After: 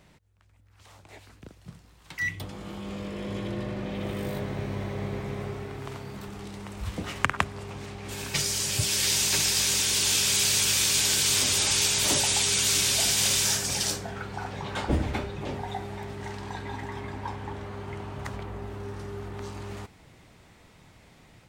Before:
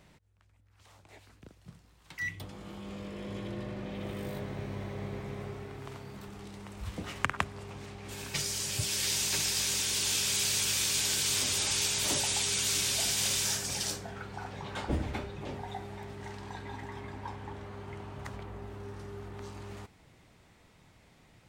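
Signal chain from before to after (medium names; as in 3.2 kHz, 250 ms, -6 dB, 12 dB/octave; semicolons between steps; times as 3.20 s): level rider gain up to 4 dB; trim +2 dB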